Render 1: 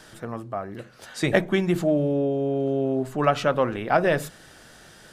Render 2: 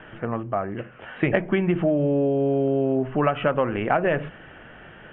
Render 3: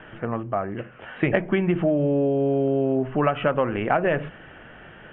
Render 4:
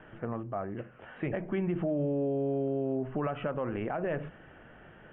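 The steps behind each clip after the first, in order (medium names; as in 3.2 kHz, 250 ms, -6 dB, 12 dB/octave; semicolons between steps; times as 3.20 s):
steep low-pass 3.1 kHz 96 dB/octave; compression, threshold -23 dBFS, peak gain reduction 9 dB; trim +5.5 dB
no audible change
treble shelf 2 kHz -9 dB; peak limiter -16.5 dBFS, peak gain reduction 8 dB; trim -6.5 dB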